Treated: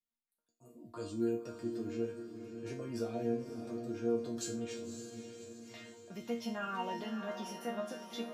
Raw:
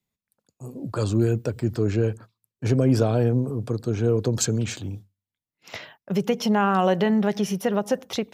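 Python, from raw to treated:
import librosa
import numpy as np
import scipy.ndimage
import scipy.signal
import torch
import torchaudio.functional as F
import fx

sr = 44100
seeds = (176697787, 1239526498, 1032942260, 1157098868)

y = fx.resonator_bank(x, sr, root=58, chord='sus4', decay_s=0.34)
y = fx.echo_diffused(y, sr, ms=573, feedback_pct=52, wet_db=-8.0)
y = y * 10.0 ** (2.5 / 20.0)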